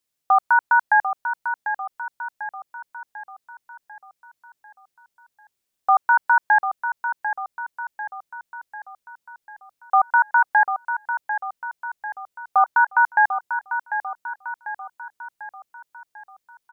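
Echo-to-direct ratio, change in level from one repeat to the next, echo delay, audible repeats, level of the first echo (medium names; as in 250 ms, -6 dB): -7.5 dB, -5.5 dB, 745 ms, 5, -9.0 dB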